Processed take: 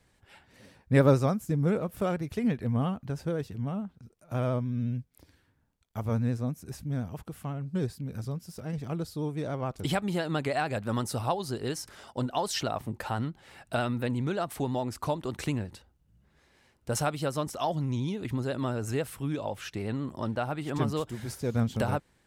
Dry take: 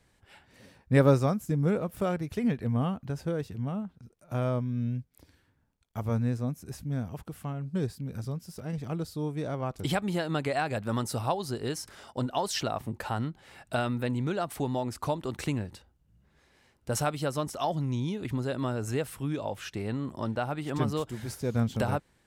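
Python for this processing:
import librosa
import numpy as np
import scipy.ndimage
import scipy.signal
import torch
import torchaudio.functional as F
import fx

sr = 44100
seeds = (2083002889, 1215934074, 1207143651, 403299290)

y = fx.vibrato(x, sr, rate_hz=14.0, depth_cents=46.0)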